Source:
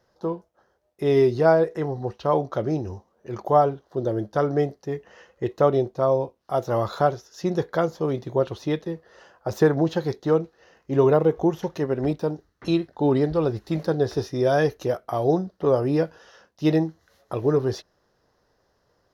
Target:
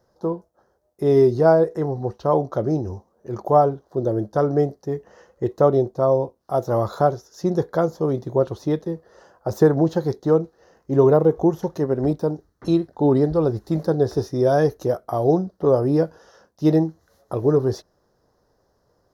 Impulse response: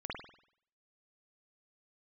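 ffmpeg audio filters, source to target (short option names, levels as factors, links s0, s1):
-af "equalizer=f=2600:t=o:w=1.3:g=-14,volume=1.5"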